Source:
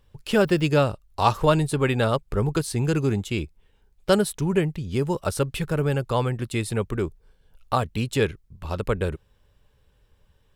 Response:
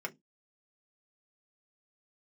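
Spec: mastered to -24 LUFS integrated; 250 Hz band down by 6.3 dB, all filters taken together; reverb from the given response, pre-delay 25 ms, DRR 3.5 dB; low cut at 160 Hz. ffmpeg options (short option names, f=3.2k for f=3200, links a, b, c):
-filter_complex "[0:a]highpass=160,equalizer=f=250:t=o:g=-8,asplit=2[a][b];[1:a]atrim=start_sample=2205,adelay=25[c];[b][c]afir=irnorm=-1:irlink=0,volume=-5.5dB[d];[a][d]amix=inputs=2:normalize=0,volume=1.5dB"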